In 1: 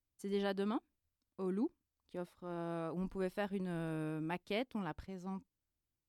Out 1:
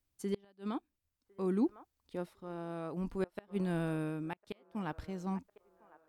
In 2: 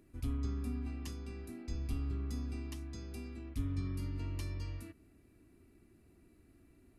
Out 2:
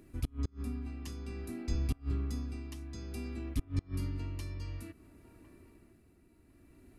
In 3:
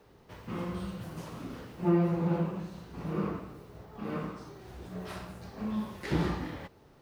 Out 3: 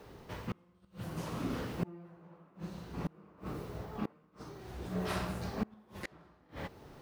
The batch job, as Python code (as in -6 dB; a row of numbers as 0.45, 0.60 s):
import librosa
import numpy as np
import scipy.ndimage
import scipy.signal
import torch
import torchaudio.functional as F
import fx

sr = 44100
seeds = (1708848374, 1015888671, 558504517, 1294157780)

y = fx.gate_flip(x, sr, shuts_db=-27.0, range_db=-31)
y = fx.echo_wet_bandpass(y, sr, ms=1054, feedback_pct=47, hz=890.0, wet_db=-18.5)
y = y * (1.0 - 0.57 / 2.0 + 0.57 / 2.0 * np.cos(2.0 * np.pi * 0.56 * (np.arange(len(y)) / sr)))
y = y * 10.0 ** (6.5 / 20.0)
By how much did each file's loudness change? +2.0, +2.0, -7.0 LU